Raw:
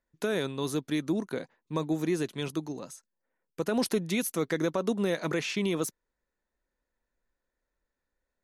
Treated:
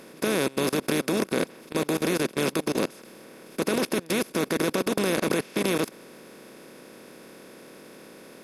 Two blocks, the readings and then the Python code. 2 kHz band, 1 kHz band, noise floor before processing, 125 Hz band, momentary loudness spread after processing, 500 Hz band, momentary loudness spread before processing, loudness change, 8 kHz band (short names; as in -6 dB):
+6.5 dB, +7.0 dB, under -85 dBFS, +1.5 dB, 5 LU, +4.5 dB, 9 LU, +4.5 dB, +6.0 dB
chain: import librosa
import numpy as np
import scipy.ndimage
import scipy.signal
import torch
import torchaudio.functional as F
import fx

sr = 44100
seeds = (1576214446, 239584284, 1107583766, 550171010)

y = fx.bin_compress(x, sr, power=0.2)
y = fx.level_steps(y, sr, step_db=23)
y = y * 10.0 ** (-1.0 / 20.0)